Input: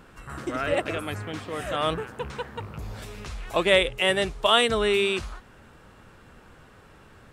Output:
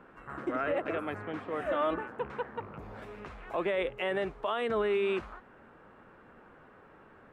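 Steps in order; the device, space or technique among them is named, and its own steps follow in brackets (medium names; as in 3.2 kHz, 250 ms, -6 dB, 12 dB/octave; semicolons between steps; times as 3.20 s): DJ mixer with the lows and highs turned down (three-band isolator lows -13 dB, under 190 Hz, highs -22 dB, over 2.2 kHz; peak limiter -20.5 dBFS, peak gain reduction 12 dB); 1.65–2.08 s: comb 3.4 ms; trim -1.5 dB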